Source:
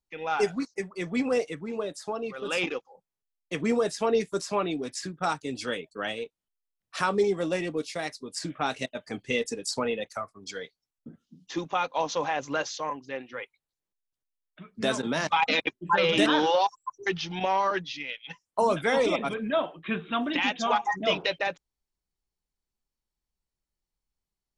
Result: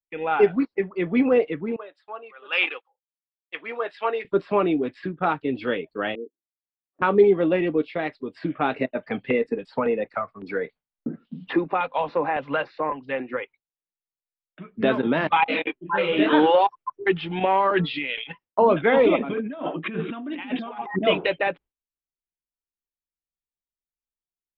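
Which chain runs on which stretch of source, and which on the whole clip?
1.76–4.25 s: high-pass 1 kHz + three bands expanded up and down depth 100%
6.15–7.02 s: Butterworth band-pass 310 Hz, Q 1.7 + distance through air 370 m
8.75–13.37 s: peaking EQ 81 Hz -9 dB 0.72 oct + LFO notch square 1.8 Hz 340–3200 Hz + three bands compressed up and down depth 70%
15.44–16.33 s: peaking EQ 93 Hz -4.5 dB 2.5 oct + detune thickener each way 31 cents
17.76–18.24 s: resonant low-pass 4.7 kHz, resonance Q 2.4 + de-hum 223.4 Hz, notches 6 + decay stretcher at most 27 dB/s
19.20–20.99 s: high-pass 110 Hz + peaking EQ 260 Hz +7.5 dB 0.32 oct + compressor with a negative ratio -37 dBFS
whole clip: inverse Chebyshev low-pass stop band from 5.9 kHz, stop band 40 dB; peaking EQ 340 Hz +5.5 dB 1.2 oct; gate with hold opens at -51 dBFS; trim +4 dB

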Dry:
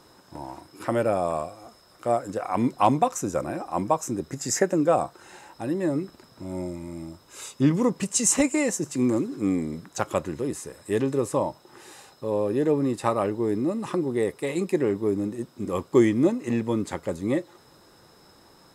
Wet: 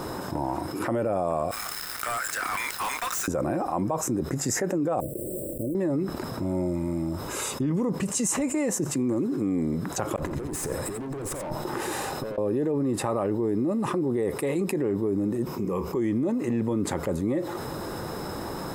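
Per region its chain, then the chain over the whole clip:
1.51–3.28 s: Chebyshev high-pass 1.6 kHz, order 3 + waveshaping leveller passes 3 + hard clipper -33 dBFS
5.00–5.75 s: block-companded coder 3-bit + compression 3:1, threshold -38 dBFS + brick-wall FIR band-stop 650–7500 Hz
10.16–12.38 s: valve stage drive 34 dB, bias 0.45 + compressor with a negative ratio -44 dBFS, ratio -0.5 + delay 88 ms -11.5 dB
15.46–15.97 s: rippled EQ curve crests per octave 0.79, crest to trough 8 dB + compression 2:1, threshold -37 dBFS + doubling 27 ms -12 dB
whole clip: peaking EQ 4.8 kHz -10 dB 2.8 oct; peak limiter -20 dBFS; level flattener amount 70%

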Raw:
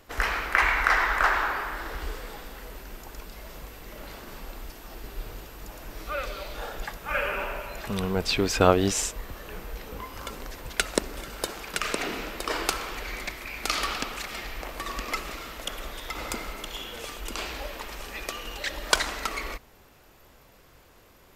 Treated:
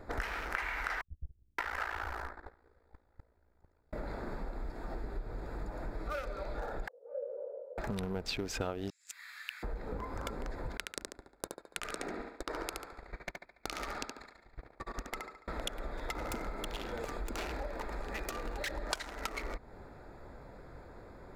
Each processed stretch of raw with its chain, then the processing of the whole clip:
1.01–3.93 s: bands offset in time lows, highs 570 ms, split 200 Hz + gate -34 dBFS, range -31 dB + ring modulator 28 Hz
6.88–7.78 s: Butterworth band-pass 500 Hz, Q 5.8 + tilt EQ +3 dB/octave
8.90–9.63 s: inverse Chebyshev high-pass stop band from 450 Hz, stop band 70 dB + compressor with a negative ratio -40 dBFS
10.77–15.48 s: gate -32 dBFS, range -36 dB + compression 5:1, threshold -35 dBFS + thinning echo 71 ms, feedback 47%, high-pass 220 Hz, level -3 dB
16.23–18.79 s: treble shelf 11 kHz +3 dB + hard clipper -28 dBFS
whole clip: local Wiener filter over 15 samples; band-stop 1.1 kHz, Q 9.3; compression 6:1, threshold -42 dBFS; trim +6.5 dB

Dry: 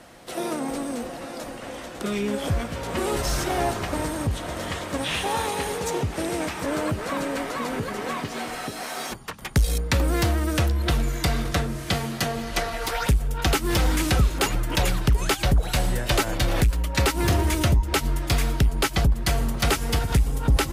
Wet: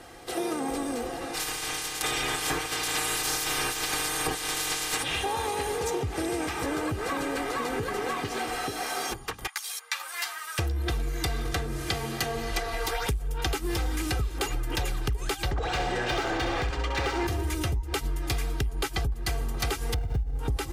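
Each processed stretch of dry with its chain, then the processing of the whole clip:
1.33–5.02 s: spectral peaks clipped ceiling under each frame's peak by 27 dB + comb 6.5 ms, depth 95%
9.47–10.59 s: high-pass 1 kHz 24 dB/octave + three-phase chorus
15.51–17.27 s: low-pass 7.2 kHz 24 dB/octave + overdrive pedal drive 24 dB, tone 1.9 kHz, clips at -11.5 dBFS + flutter echo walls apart 11.4 m, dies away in 0.56 s
19.94–20.39 s: median filter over 41 samples + comb 1.4 ms, depth 44%
whole clip: comb 2.5 ms, depth 58%; compression, threshold -26 dBFS

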